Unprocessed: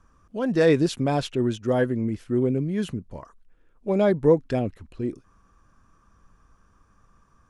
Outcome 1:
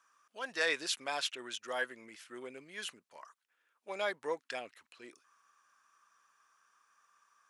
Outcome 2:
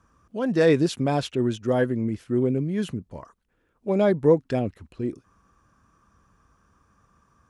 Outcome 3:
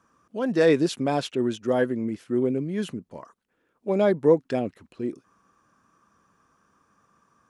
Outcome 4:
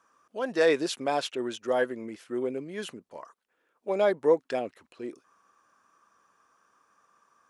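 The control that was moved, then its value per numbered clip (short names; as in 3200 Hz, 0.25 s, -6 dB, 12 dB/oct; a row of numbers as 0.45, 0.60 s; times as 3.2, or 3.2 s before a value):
HPF, cutoff: 1400, 60, 190, 500 Hz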